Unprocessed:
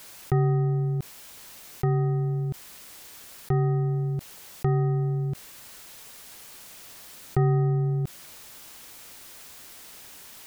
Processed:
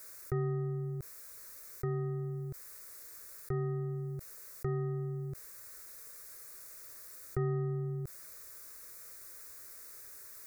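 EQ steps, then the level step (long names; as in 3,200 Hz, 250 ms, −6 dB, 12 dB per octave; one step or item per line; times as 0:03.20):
high-shelf EQ 6,700 Hz +4.5 dB
phaser with its sweep stopped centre 830 Hz, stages 6
−6.5 dB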